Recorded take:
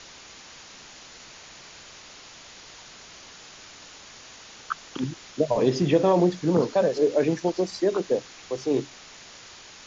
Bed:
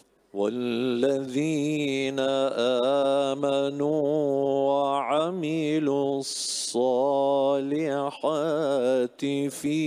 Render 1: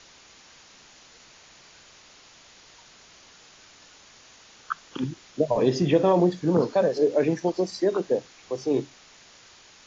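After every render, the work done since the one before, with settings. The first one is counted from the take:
noise reduction from a noise print 6 dB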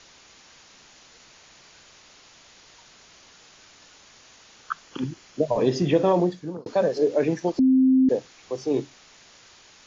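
0:04.83–0:05.43: notch filter 3,700 Hz
0:06.14–0:06.66: fade out
0:07.59–0:08.09: beep over 261 Hz −14 dBFS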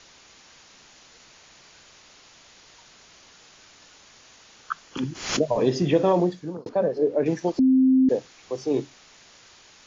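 0:04.97–0:05.49: background raised ahead of every attack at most 92 dB per second
0:06.69–0:07.26: low-pass filter 1,000 Hz 6 dB per octave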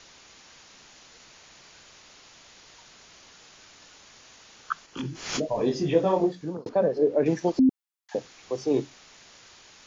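0:04.86–0:06.41: micro pitch shift up and down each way 25 cents
0:07.69–0:08.15: Butterworth high-pass 770 Hz 96 dB per octave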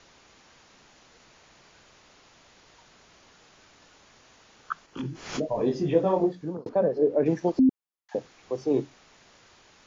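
high-shelf EQ 2,200 Hz −9 dB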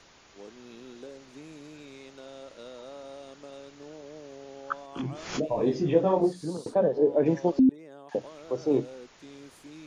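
mix in bed −21 dB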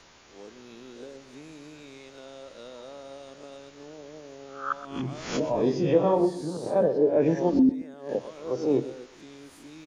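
peak hold with a rise ahead of every peak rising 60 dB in 0.42 s
repeating echo 124 ms, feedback 26%, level −15 dB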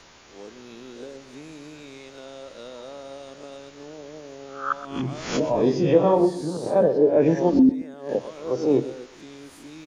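level +4 dB

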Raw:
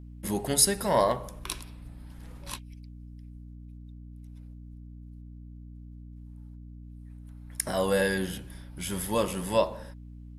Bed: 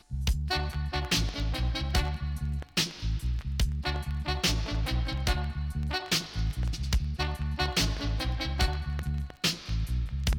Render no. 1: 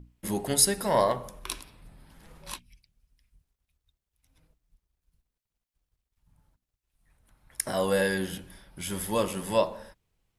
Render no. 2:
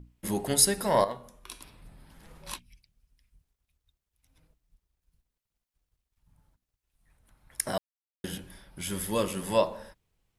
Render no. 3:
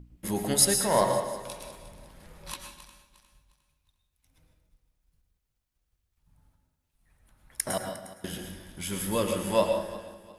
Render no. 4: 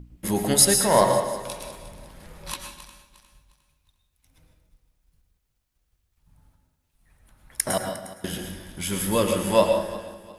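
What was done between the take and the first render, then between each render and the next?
mains-hum notches 60/120/180/240/300 Hz
0:01.04–0:01.61: tuned comb filter 240 Hz, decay 0.41 s, mix 70%; 0:07.78–0:08.24: silence; 0:08.90–0:09.43: parametric band 800 Hz −5.5 dB 0.65 octaves
feedback delay that plays each chunk backwards 178 ms, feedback 56%, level −13 dB; dense smooth reverb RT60 0.55 s, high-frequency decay 0.85×, pre-delay 95 ms, DRR 4.5 dB
level +5.5 dB; brickwall limiter −3 dBFS, peak gain reduction 1.5 dB

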